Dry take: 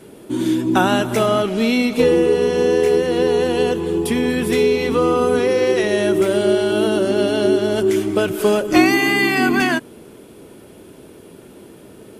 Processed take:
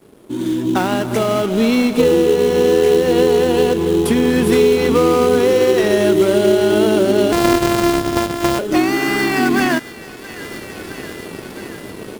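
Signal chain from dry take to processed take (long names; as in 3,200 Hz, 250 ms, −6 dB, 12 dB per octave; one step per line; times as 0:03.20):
0:07.32–0:08.59: samples sorted by size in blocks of 128 samples
downward compressor 2 to 1, threshold −19 dBFS, peak gain reduction 6.5 dB
on a send: delay with a high-pass on its return 667 ms, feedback 69%, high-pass 1,400 Hz, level −16 dB
on the sum: dead-zone distortion −47 dBFS
automatic gain control gain up to 15 dB
in parallel at −5.5 dB: sample-rate reduction 3,500 Hz, jitter 20%
on the sum: level −5 dB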